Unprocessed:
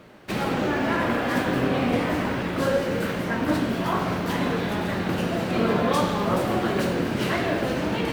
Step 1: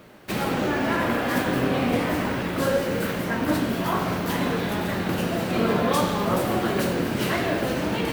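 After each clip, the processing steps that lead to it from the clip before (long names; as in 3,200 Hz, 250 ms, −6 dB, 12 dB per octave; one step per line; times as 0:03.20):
high-shelf EQ 10,000 Hz +11.5 dB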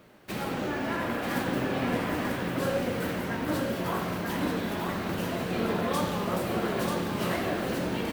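single-tap delay 938 ms −4 dB
level −7 dB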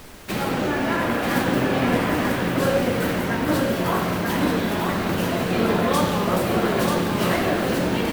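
background noise pink −52 dBFS
level +8 dB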